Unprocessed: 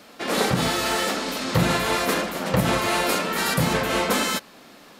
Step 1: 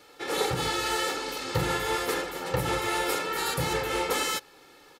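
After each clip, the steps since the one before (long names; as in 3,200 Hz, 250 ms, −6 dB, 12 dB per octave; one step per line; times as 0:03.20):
comb filter 2.3 ms, depth 85%
level −8 dB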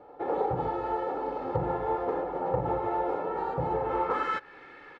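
downward compressor 2.5 to 1, threshold −32 dBFS, peak gain reduction 7 dB
low-pass filter sweep 780 Hz → 1,900 Hz, 0:03.77–0:04.53
level +2.5 dB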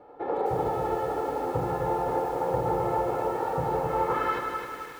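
echo machine with several playback heads 76 ms, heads first and second, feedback 42%, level −10.5 dB
feedback echo at a low word length 261 ms, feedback 55%, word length 8 bits, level −5 dB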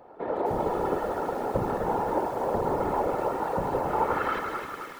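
random phases in short frames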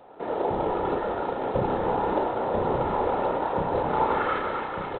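double-tracking delay 32 ms −5 dB
single-tap delay 1,194 ms −6.5 dB
G.726 24 kbit/s 8,000 Hz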